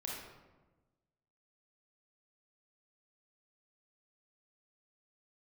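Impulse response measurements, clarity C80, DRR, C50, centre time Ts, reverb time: 3.0 dB, -4.0 dB, -0.5 dB, 72 ms, 1.2 s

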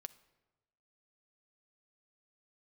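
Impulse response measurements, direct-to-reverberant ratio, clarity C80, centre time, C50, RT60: 11.0 dB, 20.0 dB, 3 ms, 17.5 dB, 1.1 s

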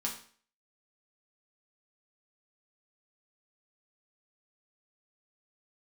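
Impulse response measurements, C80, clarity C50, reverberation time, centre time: 11.5 dB, 7.5 dB, 0.45 s, 23 ms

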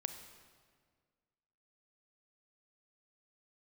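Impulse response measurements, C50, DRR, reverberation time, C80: 8.5 dB, 7.5 dB, 1.8 s, 10.0 dB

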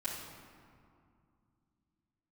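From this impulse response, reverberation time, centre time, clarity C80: 2.4 s, 80 ms, 3.5 dB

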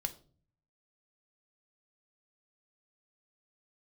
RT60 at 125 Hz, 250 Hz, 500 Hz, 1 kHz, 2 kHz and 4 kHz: 0.95 s, 0.70 s, 0.50 s, 0.35 s, 0.30 s, 0.30 s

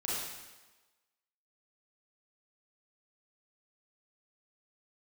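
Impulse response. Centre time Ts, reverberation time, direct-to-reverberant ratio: 98 ms, 1.2 s, -7.5 dB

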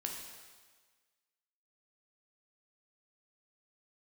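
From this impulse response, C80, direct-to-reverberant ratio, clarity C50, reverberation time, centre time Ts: 5.0 dB, 0.5 dB, 3.5 dB, 1.5 s, 55 ms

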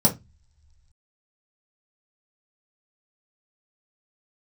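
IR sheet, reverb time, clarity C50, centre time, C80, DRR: no single decay rate, 14.5 dB, 12 ms, 23.5 dB, -2.5 dB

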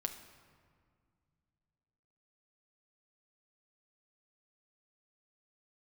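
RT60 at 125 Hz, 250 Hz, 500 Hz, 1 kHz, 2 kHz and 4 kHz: 3.3 s, 3.0 s, 2.0 s, 2.0 s, 1.6 s, 1.2 s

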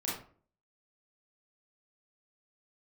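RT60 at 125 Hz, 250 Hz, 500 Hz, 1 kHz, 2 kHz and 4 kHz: 0.55 s, 0.55 s, 0.50 s, 0.40 s, 0.35 s, 0.25 s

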